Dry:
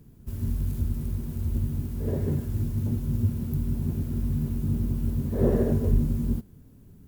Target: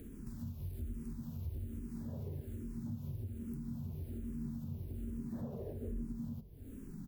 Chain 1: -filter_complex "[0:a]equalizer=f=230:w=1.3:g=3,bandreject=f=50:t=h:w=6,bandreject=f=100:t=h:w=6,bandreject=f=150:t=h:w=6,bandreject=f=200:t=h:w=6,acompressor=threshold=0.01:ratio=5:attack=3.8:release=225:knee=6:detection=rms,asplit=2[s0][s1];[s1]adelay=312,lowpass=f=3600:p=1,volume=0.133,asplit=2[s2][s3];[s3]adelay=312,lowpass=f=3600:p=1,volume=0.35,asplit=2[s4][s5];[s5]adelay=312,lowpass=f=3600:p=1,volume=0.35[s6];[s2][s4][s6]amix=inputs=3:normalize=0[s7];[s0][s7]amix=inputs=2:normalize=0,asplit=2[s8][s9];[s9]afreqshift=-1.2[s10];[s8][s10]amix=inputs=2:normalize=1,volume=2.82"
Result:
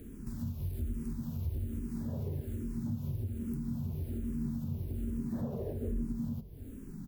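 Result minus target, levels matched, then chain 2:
compression: peak gain reduction -6 dB
-filter_complex "[0:a]equalizer=f=230:w=1.3:g=3,bandreject=f=50:t=h:w=6,bandreject=f=100:t=h:w=6,bandreject=f=150:t=h:w=6,bandreject=f=200:t=h:w=6,acompressor=threshold=0.00422:ratio=5:attack=3.8:release=225:knee=6:detection=rms,asplit=2[s0][s1];[s1]adelay=312,lowpass=f=3600:p=1,volume=0.133,asplit=2[s2][s3];[s3]adelay=312,lowpass=f=3600:p=1,volume=0.35,asplit=2[s4][s5];[s5]adelay=312,lowpass=f=3600:p=1,volume=0.35[s6];[s2][s4][s6]amix=inputs=3:normalize=0[s7];[s0][s7]amix=inputs=2:normalize=0,asplit=2[s8][s9];[s9]afreqshift=-1.2[s10];[s8][s10]amix=inputs=2:normalize=1,volume=2.82"

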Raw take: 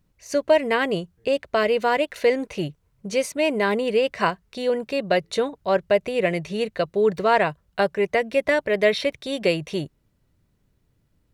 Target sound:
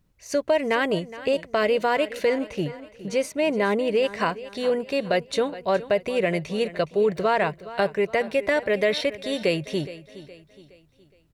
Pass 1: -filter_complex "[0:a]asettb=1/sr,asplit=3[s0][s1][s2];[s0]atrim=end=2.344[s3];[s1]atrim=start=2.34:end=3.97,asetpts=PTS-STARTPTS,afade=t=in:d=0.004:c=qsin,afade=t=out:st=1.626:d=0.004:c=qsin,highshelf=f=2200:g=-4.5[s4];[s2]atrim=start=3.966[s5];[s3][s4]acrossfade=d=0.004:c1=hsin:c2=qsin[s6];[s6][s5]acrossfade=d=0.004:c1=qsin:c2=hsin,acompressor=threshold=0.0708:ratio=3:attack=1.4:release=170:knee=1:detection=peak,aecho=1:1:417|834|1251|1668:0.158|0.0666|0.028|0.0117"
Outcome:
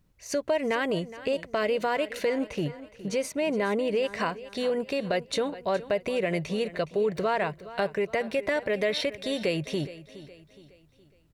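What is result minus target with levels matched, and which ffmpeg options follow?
compression: peak gain reduction +5 dB
-filter_complex "[0:a]asettb=1/sr,asplit=3[s0][s1][s2];[s0]atrim=end=2.344[s3];[s1]atrim=start=2.34:end=3.97,asetpts=PTS-STARTPTS,afade=t=in:d=0.004:c=qsin,afade=t=out:st=1.626:d=0.004:c=qsin,highshelf=f=2200:g=-4.5[s4];[s2]atrim=start=3.966[s5];[s3][s4]acrossfade=d=0.004:c1=hsin:c2=qsin[s6];[s6][s5]acrossfade=d=0.004:c1=qsin:c2=hsin,acompressor=threshold=0.168:ratio=3:attack=1.4:release=170:knee=1:detection=peak,aecho=1:1:417|834|1251|1668:0.158|0.0666|0.028|0.0117"

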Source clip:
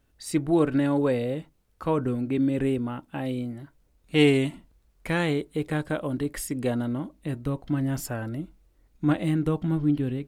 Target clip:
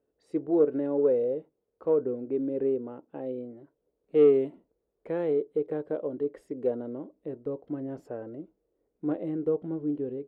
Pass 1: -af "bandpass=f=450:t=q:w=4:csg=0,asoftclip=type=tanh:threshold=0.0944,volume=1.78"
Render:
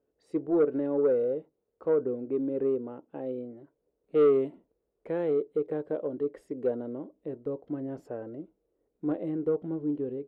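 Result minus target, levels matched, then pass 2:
saturation: distortion +13 dB
-af "bandpass=f=450:t=q:w=4:csg=0,asoftclip=type=tanh:threshold=0.237,volume=1.78"

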